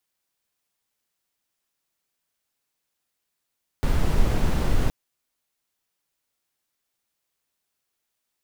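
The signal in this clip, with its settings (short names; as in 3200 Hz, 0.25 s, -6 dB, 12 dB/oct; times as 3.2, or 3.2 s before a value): noise brown, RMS -19 dBFS 1.07 s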